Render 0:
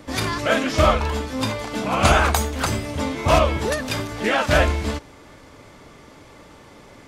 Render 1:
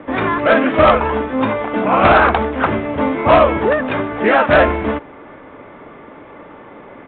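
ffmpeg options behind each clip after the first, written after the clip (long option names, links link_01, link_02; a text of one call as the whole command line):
ffmpeg -i in.wav -filter_complex "[0:a]acrossover=split=190 2300:gain=0.224 1 0.0631[link_01][link_02][link_03];[link_01][link_02][link_03]amix=inputs=3:normalize=0,aresample=8000,aeval=exprs='0.631*sin(PI/2*2*val(0)/0.631)':channel_layout=same,aresample=44100" out.wav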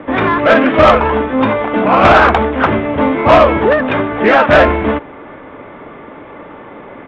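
ffmpeg -i in.wav -af "acontrast=23" out.wav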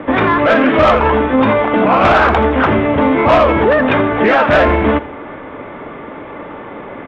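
ffmpeg -i in.wav -af "aecho=1:1:83|166|249:0.106|0.036|0.0122,alimiter=level_in=7dB:limit=-1dB:release=50:level=0:latency=1,volume=-3.5dB" out.wav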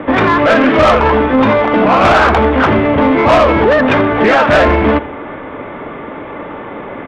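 ffmpeg -i in.wav -af "acontrast=32,volume=-2dB" out.wav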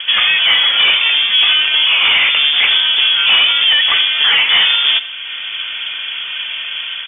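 ffmpeg -i in.wav -af "lowpass=frequency=3100:width_type=q:width=0.5098,lowpass=frequency=3100:width_type=q:width=0.6013,lowpass=frequency=3100:width_type=q:width=0.9,lowpass=frequency=3100:width_type=q:width=2.563,afreqshift=-3600,dynaudnorm=framelen=110:gausssize=5:maxgain=3dB" out.wav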